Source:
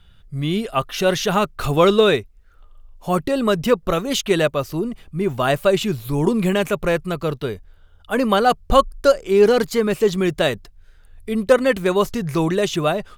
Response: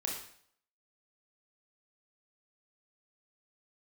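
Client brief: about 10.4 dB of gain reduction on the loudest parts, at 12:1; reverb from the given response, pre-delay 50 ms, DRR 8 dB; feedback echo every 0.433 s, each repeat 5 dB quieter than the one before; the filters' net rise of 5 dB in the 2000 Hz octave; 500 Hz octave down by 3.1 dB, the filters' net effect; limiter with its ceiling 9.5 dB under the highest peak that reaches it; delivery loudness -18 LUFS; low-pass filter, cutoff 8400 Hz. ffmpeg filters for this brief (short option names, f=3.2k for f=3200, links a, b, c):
-filter_complex "[0:a]lowpass=8.4k,equalizer=f=500:t=o:g=-4,equalizer=f=2k:t=o:g=7,acompressor=threshold=-20dB:ratio=12,alimiter=limit=-19.5dB:level=0:latency=1,aecho=1:1:433|866|1299|1732|2165|2598|3031:0.562|0.315|0.176|0.0988|0.0553|0.031|0.0173,asplit=2[a][b];[1:a]atrim=start_sample=2205,adelay=50[c];[b][c]afir=irnorm=-1:irlink=0,volume=-10.5dB[d];[a][d]amix=inputs=2:normalize=0,volume=9.5dB"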